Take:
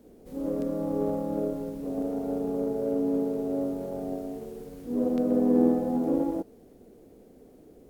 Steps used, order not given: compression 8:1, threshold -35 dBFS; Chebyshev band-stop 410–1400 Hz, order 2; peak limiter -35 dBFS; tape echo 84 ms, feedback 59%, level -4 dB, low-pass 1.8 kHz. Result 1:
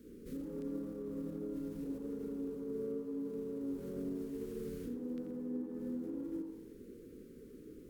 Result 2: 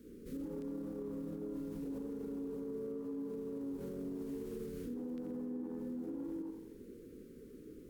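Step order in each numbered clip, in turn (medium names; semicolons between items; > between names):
Chebyshev band-stop > compression > peak limiter > tape echo; Chebyshev band-stop > compression > tape echo > peak limiter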